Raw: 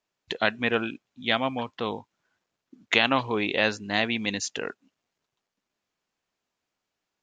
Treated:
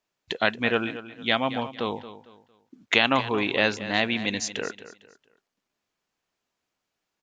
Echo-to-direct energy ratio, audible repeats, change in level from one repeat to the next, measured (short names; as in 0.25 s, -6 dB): -13.5 dB, 3, -10.0 dB